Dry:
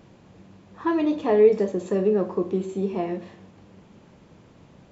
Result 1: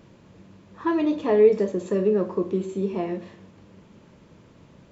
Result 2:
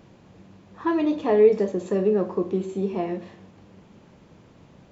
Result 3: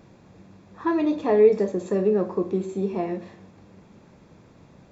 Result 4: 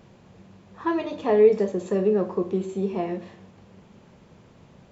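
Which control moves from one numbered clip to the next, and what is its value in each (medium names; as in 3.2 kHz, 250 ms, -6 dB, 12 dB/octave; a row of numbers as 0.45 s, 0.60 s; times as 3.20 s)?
band-stop, frequency: 760 Hz, 8 kHz, 3 kHz, 300 Hz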